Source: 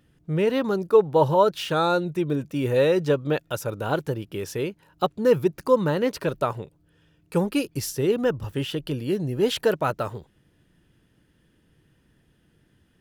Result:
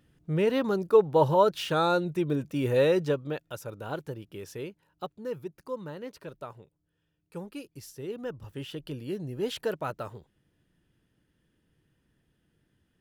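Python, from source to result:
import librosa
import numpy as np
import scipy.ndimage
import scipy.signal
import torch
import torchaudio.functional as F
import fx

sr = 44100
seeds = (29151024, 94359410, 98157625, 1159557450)

y = fx.gain(x, sr, db=fx.line((2.95, -3.0), (3.36, -10.0), (4.67, -10.0), (5.32, -16.5), (7.83, -16.5), (8.84, -9.0)))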